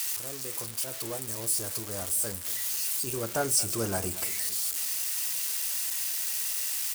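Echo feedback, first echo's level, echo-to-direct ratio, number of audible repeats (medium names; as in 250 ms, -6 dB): 50%, -18.0 dB, -17.0 dB, 3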